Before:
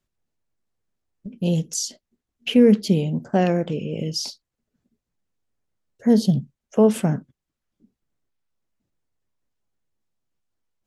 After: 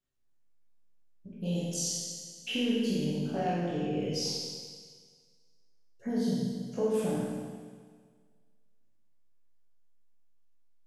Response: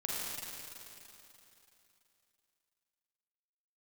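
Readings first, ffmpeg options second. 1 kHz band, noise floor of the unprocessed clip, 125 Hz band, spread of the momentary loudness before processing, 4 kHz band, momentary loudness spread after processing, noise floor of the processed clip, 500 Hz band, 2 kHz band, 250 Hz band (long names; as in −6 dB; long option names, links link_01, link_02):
−7.5 dB, −84 dBFS, −11.5 dB, 12 LU, −4.5 dB, 14 LU, −64 dBFS, −11.0 dB, −7.0 dB, −11.5 dB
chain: -filter_complex "[0:a]flanger=delay=15.5:depth=2.4:speed=1.3,acompressor=threshold=-24dB:ratio=6[link_01];[1:a]atrim=start_sample=2205,asetrate=79380,aresample=44100[link_02];[link_01][link_02]afir=irnorm=-1:irlink=0"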